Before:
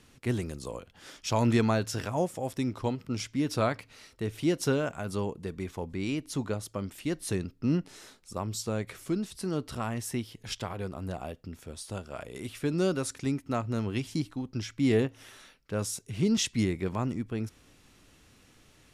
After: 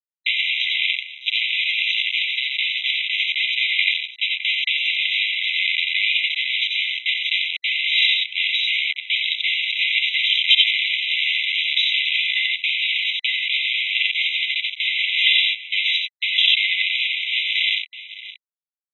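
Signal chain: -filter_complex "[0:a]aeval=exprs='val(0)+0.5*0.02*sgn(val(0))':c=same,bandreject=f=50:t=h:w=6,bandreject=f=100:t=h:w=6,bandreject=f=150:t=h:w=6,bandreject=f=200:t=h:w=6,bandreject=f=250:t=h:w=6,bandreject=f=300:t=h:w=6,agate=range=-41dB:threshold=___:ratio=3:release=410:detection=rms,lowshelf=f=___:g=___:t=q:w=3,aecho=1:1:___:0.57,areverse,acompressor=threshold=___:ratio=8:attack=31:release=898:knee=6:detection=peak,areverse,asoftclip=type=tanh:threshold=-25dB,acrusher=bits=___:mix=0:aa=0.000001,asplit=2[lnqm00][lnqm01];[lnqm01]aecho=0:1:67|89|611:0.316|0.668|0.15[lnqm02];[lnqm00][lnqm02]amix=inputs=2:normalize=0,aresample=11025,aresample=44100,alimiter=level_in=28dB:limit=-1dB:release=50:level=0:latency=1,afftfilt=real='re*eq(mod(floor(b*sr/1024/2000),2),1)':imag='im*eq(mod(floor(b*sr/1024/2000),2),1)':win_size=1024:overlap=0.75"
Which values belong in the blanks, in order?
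-35dB, 160, -7, 2.9, -32dB, 5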